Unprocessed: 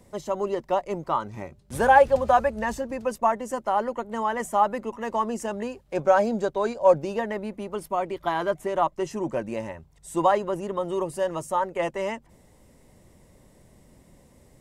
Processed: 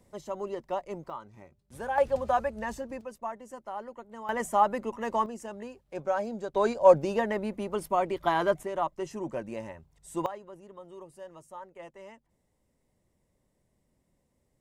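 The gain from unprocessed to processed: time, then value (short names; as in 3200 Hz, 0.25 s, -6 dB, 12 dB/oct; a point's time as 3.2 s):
-8 dB
from 1.1 s -15 dB
from 1.98 s -7 dB
from 3.01 s -14 dB
from 4.29 s -2 dB
from 5.26 s -10 dB
from 6.54 s 0 dB
from 8.63 s -6.5 dB
from 10.26 s -19 dB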